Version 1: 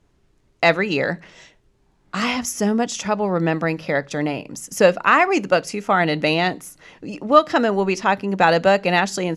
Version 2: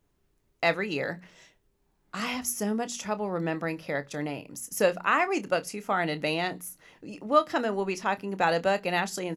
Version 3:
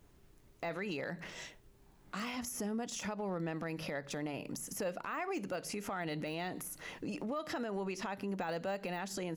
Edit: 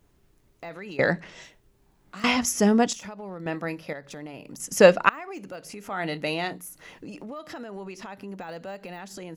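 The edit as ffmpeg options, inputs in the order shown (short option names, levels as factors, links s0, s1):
-filter_complex "[0:a]asplit=3[s0][s1][s2];[1:a]asplit=2[s3][s4];[2:a]asplit=6[s5][s6][s7][s8][s9][s10];[s5]atrim=end=0.992[s11];[s0]atrim=start=0.988:end=1.432[s12];[s6]atrim=start=1.428:end=2.242[s13];[s1]atrim=start=2.238:end=2.932[s14];[s7]atrim=start=2.928:end=3.462[s15];[s3]atrim=start=3.458:end=3.932[s16];[s8]atrim=start=3.928:end=4.602[s17];[s2]atrim=start=4.598:end=5.092[s18];[s9]atrim=start=5.088:end=6.08[s19];[s4]atrim=start=5.84:end=6.84[s20];[s10]atrim=start=6.6[s21];[s11][s12]acrossfade=d=0.004:c1=hsin:c2=hsin[s22];[s22][s13]acrossfade=d=0.004:c1=hsin:c2=hsin[s23];[s23][s14]acrossfade=d=0.004:c1=hsin:c2=hsin[s24];[s24][s15]acrossfade=d=0.004:c1=hsin:c2=hsin[s25];[s25][s16]acrossfade=d=0.004:c1=hsin:c2=hsin[s26];[s26][s17]acrossfade=d=0.004:c1=hsin:c2=hsin[s27];[s27][s18]acrossfade=d=0.004:c1=hsin:c2=hsin[s28];[s28][s19]acrossfade=d=0.004:c1=hsin:c2=hsin[s29];[s29][s20]acrossfade=d=0.24:c1=tri:c2=tri[s30];[s30][s21]acrossfade=d=0.24:c1=tri:c2=tri"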